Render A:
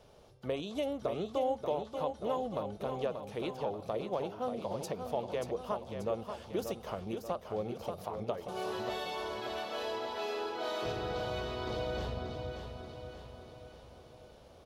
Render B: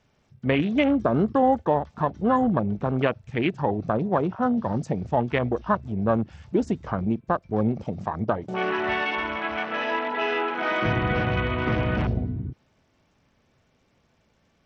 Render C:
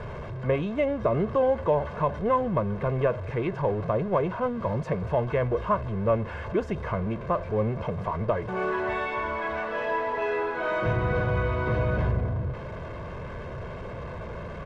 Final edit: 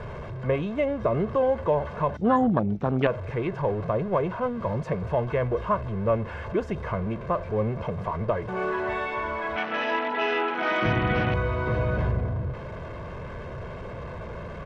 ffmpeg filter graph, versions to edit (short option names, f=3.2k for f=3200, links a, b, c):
-filter_complex "[1:a]asplit=2[a][b];[2:a]asplit=3[c][d][e];[c]atrim=end=2.172[f];[a]atrim=start=2.168:end=3.072[g];[d]atrim=start=3.068:end=9.562[h];[b]atrim=start=9.558:end=11.342[i];[e]atrim=start=11.338[j];[f][g]acrossfade=d=0.004:c1=hsin:c2=hsin[k];[k][h]acrossfade=d=0.004:c1=hsin:c2=hsin[l];[l][i]acrossfade=d=0.004:c1=hsin:c2=hsin[m];[m][j]acrossfade=d=0.004:c1=hsin:c2=hsin"